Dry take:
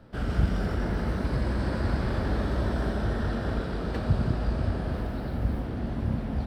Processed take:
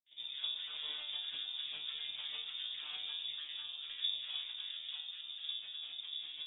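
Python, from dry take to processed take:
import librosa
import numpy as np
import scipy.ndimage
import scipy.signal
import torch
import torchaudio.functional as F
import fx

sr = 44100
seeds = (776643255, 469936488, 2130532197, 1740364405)

p1 = fx.peak_eq(x, sr, hz=2600.0, db=-9.0, octaves=0.62)
p2 = fx.granulator(p1, sr, seeds[0], grain_ms=100.0, per_s=20.0, spray_ms=100.0, spread_st=12)
p3 = fx.comb_fb(p2, sr, f0_hz=150.0, decay_s=0.52, harmonics='all', damping=0.0, mix_pct=90)
p4 = p3 + fx.echo_single(p3, sr, ms=738, db=-17.5, dry=0)
p5 = fx.freq_invert(p4, sr, carrier_hz=3600)
y = F.gain(torch.from_numpy(p5), -1.5).numpy()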